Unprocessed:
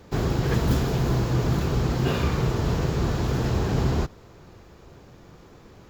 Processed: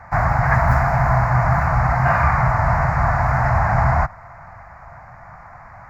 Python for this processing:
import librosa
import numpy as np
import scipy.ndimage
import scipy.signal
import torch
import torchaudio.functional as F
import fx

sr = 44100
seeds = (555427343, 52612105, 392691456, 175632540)

y = fx.curve_eq(x, sr, hz=(130.0, 420.0, 680.0, 2100.0, 3200.0, 4800.0, 13000.0), db=(0, -25, 11, 9, -28, -12, -15))
y = F.gain(torch.from_numpy(y), 6.0).numpy()